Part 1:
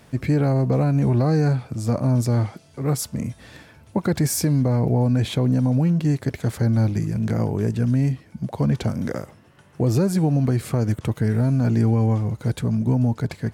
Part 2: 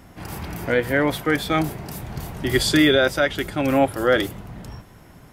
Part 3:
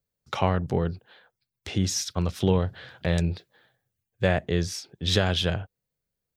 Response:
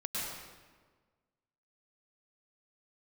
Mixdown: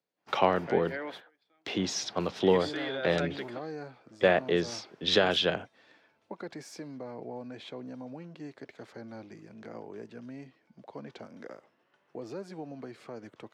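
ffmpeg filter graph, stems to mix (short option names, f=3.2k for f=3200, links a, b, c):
-filter_complex "[0:a]adelay=2350,volume=-14dB[a];[1:a]acompressor=threshold=-23dB:ratio=3,volume=-10.5dB[b];[2:a]equalizer=f=160:t=o:w=2.5:g=6,volume=0.5dB,asplit=2[c][d];[d]apad=whole_len=234712[e];[b][e]sidechaingate=range=-33dB:threshold=-51dB:ratio=16:detection=peak[f];[a][f][c]amix=inputs=3:normalize=0,highpass=120,acrossover=split=280 5500:gain=0.1 1 0.0708[g][h][i];[g][h][i]amix=inputs=3:normalize=0"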